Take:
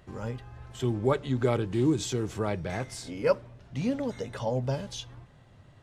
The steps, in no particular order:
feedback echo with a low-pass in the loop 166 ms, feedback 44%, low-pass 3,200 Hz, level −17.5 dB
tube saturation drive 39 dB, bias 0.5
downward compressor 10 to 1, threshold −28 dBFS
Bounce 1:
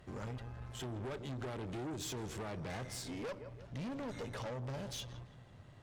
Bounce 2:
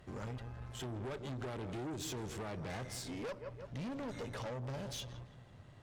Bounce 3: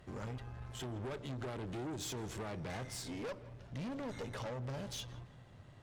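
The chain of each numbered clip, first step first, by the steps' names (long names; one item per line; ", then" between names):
downward compressor, then feedback echo with a low-pass in the loop, then tube saturation
feedback echo with a low-pass in the loop, then downward compressor, then tube saturation
downward compressor, then tube saturation, then feedback echo with a low-pass in the loop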